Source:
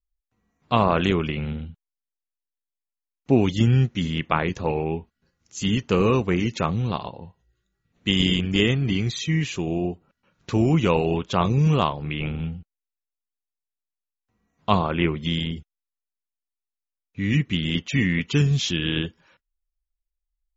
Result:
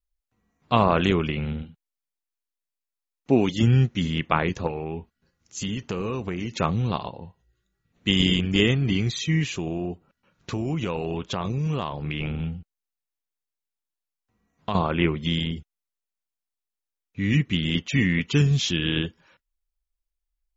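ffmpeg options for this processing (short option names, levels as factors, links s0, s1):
-filter_complex "[0:a]asettb=1/sr,asplit=3[s0][s1][s2];[s0]atrim=end=1.624[s3];[s1]atrim=start=1.62:end=3.63,asetpts=PTS-STARTPTS,afade=t=in:d=0.004:c=qsin,afade=t=out:st=2.006:d=0.004:c=qsin,equalizer=f=73:t=o:w=1.2:g=-13[s4];[s2]atrim=start=3.626[s5];[s3][s4]acrossfade=d=0.004:c1=hsin:c2=qsin[s6];[s6][s5]acrossfade=d=0.004:c1=qsin:c2=hsin,asettb=1/sr,asplit=3[s7][s8][s9];[s7]atrim=end=4.674[s10];[s8]atrim=start=4.67:end=6.57,asetpts=PTS-STARTPTS,afade=t=in:d=0.004:c=qsin,afade=t=out:st=1.896:d=0.004:c=qsin,acompressor=threshold=0.0562:ratio=6:attack=3.2:release=140:knee=1:detection=peak[s11];[s9]atrim=start=6.566[s12];[s10][s11]acrossfade=d=0.004:c1=hsin:c2=qsin[s13];[s13][s12]acrossfade=d=0.004:c1=qsin:c2=hsin,asettb=1/sr,asplit=3[s14][s15][s16];[s14]atrim=end=9.474[s17];[s15]atrim=start=9.47:end=14.75,asetpts=PTS-STARTPTS,afade=t=in:d=0.004:c=qsin,afade=t=out:st=5.276:d=0.004:c=qsin,acompressor=threshold=0.0708:ratio=6:attack=3.2:release=140:knee=1:detection=peak[s18];[s16]atrim=start=14.746[s19];[s17][s18]acrossfade=d=0.004:c1=hsin:c2=qsin[s20];[s20][s19]acrossfade=d=0.004:c1=qsin:c2=hsin"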